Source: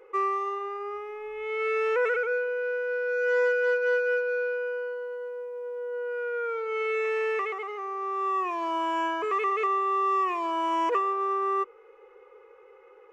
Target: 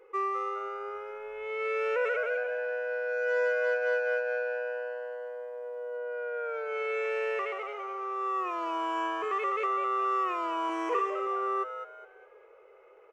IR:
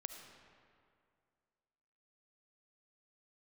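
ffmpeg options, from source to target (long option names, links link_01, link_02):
-filter_complex "[0:a]asettb=1/sr,asplit=3[link_01][link_02][link_03];[link_01]atrim=end=5.974[link_04];[link_02]atrim=start=5.97:end=6.54,asetpts=PTS-STARTPTS,afade=type=in:duration=0.004:curve=qsin,afade=type=out:start_time=0.566:duration=0.004:curve=qsin,highshelf=frequency=4400:gain=-8[link_05];[link_03]atrim=start=6.536[link_06];[link_04][link_05]acrossfade=duration=0.004:curve1=hsin:curve2=qsin[link_07];[link_07][link_06]acrossfade=duration=0.004:curve1=qsin:curve2=hsin,asettb=1/sr,asplit=3[link_08][link_09][link_10];[link_08]atrim=end=10.654[link_11];[link_09]atrim=start=10.65:end=11.27,asetpts=PTS-STARTPTS,afade=type=in:duration=0.004:curve=qsin,afade=type=out:start_time=0.616:duration=0.004:curve=qsin,asplit=2[link_12][link_13];[link_13]adelay=43,volume=-4dB[link_14];[link_12][link_14]amix=inputs=2:normalize=0,atrim=end_sample=27342[link_15];[link_10]atrim=start=11.266[link_16];[link_11][link_15]acrossfade=duration=0.004:curve1=hsin:curve2=qsin[link_17];[link_17][link_16]acrossfade=duration=0.004:curve1=qsin:curve2=hsin,asplit=5[link_18][link_19][link_20][link_21][link_22];[link_19]adelay=206,afreqshift=120,volume=-9dB[link_23];[link_20]adelay=412,afreqshift=240,volume=-19.2dB[link_24];[link_21]adelay=618,afreqshift=360,volume=-29.3dB[link_25];[link_22]adelay=824,afreqshift=480,volume=-39.5dB[link_26];[link_18][link_23][link_24][link_25][link_26]amix=inputs=5:normalize=0,volume=-4dB"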